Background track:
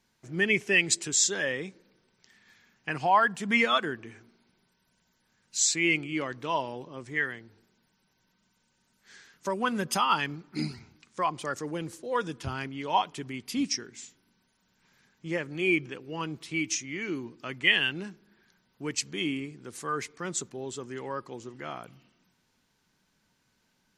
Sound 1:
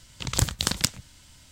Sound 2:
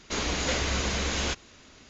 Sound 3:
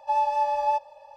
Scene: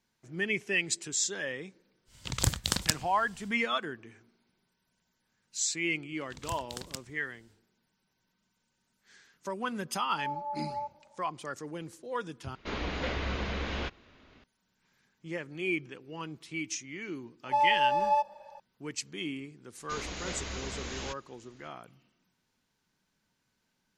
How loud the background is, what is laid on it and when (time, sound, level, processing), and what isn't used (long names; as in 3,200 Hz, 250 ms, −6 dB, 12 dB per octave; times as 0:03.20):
background track −6 dB
0:02.05: mix in 1 −4 dB, fades 0.10 s
0:06.10: mix in 1 −17 dB, fades 0.10 s
0:10.09: mix in 3 −12.5 dB + Butterworth low-pass 1,300 Hz
0:12.55: overwrite with 2 −4 dB + Bessel low-pass filter 2,800 Hz, order 4
0:17.44: mix in 3 −2 dB
0:19.79: mix in 2 −10.5 dB